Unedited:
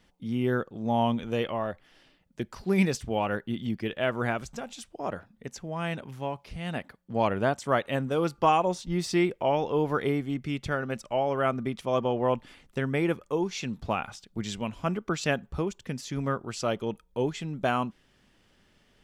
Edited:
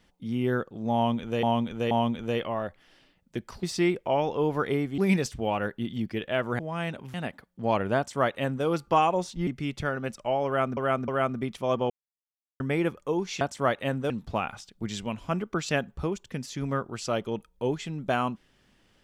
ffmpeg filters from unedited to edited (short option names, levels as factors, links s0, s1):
-filter_complex "[0:a]asplit=14[s0][s1][s2][s3][s4][s5][s6][s7][s8][s9][s10][s11][s12][s13];[s0]atrim=end=1.432[s14];[s1]atrim=start=0.948:end=1.432[s15];[s2]atrim=start=0.948:end=2.672[s16];[s3]atrim=start=8.978:end=10.332[s17];[s4]atrim=start=2.668:end=4.282[s18];[s5]atrim=start=5.628:end=6.182[s19];[s6]atrim=start=6.648:end=8.982[s20];[s7]atrim=start=10.328:end=11.632[s21];[s8]atrim=start=11.318:end=11.632[s22];[s9]atrim=start=11.318:end=12.14,asetpts=PTS-STARTPTS,afade=t=out:st=0.818:d=0.004:c=hsin[s23];[s10]atrim=start=12.14:end=12.84,asetpts=PTS-STARTPTS,volume=0[s24];[s11]atrim=start=12.84:end=13.652,asetpts=PTS-STARTPTS,afade=t=in:d=0.004:c=hsin[s25];[s12]atrim=start=7.478:end=8.172[s26];[s13]atrim=start=13.648[s27];[s14][s15]acrossfade=d=0.004:c1=hsin:c2=hsin[s28];[s28][s16]acrossfade=d=0.004:c1=hsin:c2=hsin[s29];[s29][s17]acrossfade=d=0.004:c1=hsin:c2=hsin[s30];[s30][s18]acrossfade=d=0.004:c1=hsin:c2=hsin[s31];[s31][s19]acrossfade=d=0.004:c1=hsin:c2=hsin[s32];[s32][s20]acrossfade=d=0.004:c1=hsin:c2=hsin[s33];[s33][s21]acrossfade=d=0.004:c1=hsin:c2=hsin[s34];[s34][s22]acrossfade=d=0.004:c1=hsin:c2=hsin[s35];[s23][s24][s25]concat=n=3:v=0:a=1[s36];[s35][s36]acrossfade=d=0.004:c1=hsin:c2=hsin[s37];[s37][s26]acrossfade=d=0.004:c1=hsin:c2=hsin[s38];[s38][s27]acrossfade=d=0.004:c1=hsin:c2=hsin"